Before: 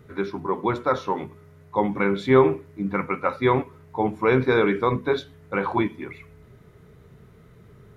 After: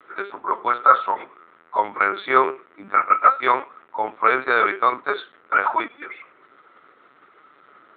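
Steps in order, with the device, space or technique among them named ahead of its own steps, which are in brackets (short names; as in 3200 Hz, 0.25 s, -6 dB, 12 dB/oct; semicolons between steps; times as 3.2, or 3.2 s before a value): talking toy (LPC vocoder at 8 kHz pitch kept; HPF 680 Hz 12 dB/oct; bell 1300 Hz +11.5 dB 0.46 oct); gain +4 dB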